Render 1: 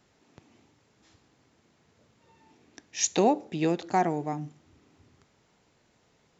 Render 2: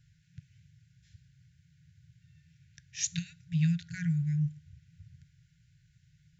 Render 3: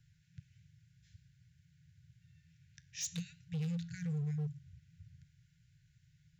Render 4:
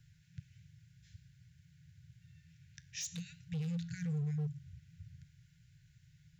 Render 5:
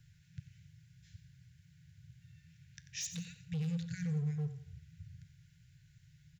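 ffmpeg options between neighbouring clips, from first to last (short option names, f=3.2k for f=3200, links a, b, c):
-af "afftfilt=real='re*(1-between(b*sr/4096,180,1400))':imag='im*(1-between(b*sr/4096,180,1400))':win_size=4096:overlap=0.75,lowshelf=f=220:t=q:w=1.5:g=13.5,volume=-5.5dB"
-filter_complex "[0:a]flanger=delay=8.8:depth=3.4:regen=-89:speed=0.51:shape=sinusoidal,volume=34.5dB,asoftclip=hard,volume=-34.5dB,acrossover=split=320|3000[a][b][c];[b]acompressor=threshold=-55dB:ratio=6[d];[a][d][c]amix=inputs=3:normalize=0,volume=1dB"
-af "alimiter=level_in=12dB:limit=-24dB:level=0:latency=1:release=147,volume=-12dB,volume=4dB"
-af "aecho=1:1:90|180|270|360:0.251|0.0879|0.0308|0.0108,volume=1dB"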